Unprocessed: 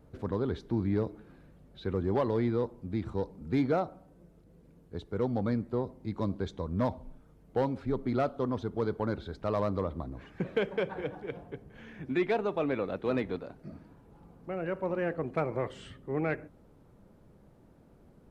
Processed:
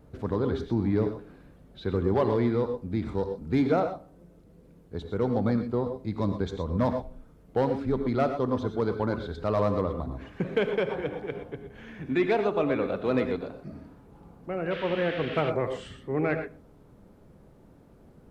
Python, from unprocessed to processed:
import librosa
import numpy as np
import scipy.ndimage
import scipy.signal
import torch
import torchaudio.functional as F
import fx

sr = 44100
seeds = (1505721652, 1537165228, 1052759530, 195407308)

y = fx.rev_gated(x, sr, seeds[0], gate_ms=140, shape='rising', drr_db=7.0)
y = fx.dmg_noise_band(y, sr, seeds[1], low_hz=1300.0, high_hz=3300.0, level_db=-44.0, at=(14.7, 15.49), fade=0.02)
y = y * librosa.db_to_amplitude(3.5)